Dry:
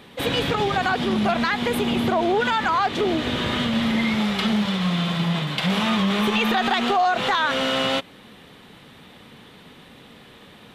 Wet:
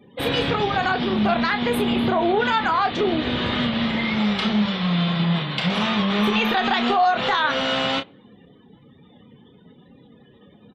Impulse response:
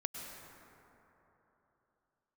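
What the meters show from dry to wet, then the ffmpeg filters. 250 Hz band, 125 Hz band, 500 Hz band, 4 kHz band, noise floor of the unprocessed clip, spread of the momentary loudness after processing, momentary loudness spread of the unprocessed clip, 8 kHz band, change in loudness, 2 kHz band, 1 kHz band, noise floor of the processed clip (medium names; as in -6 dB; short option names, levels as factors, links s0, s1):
+0.5 dB, +1.0 dB, +0.5 dB, +0.5 dB, -48 dBFS, 3 LU, 3 LU, no reading, +0.5 dB, +0.5 dB, +1.0 dB, -52 dBFS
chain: -filter_complex "[0:a]afftdn=nr=35:nf=-43,aeval=exprs='0.355*(cos(1*acos(clip(val(0)/0.355,-1,1)))-cos(1*PI/2))+0.002*(cos(3*acos(clip(val(0)/0.355,-1,1)))-cos(3*PI/2))':c=same,asplit=2[s0][s1];[s1]adelay=29,volume=0.398[s2];[s0][s2]amix=inputs=2:normalize=0"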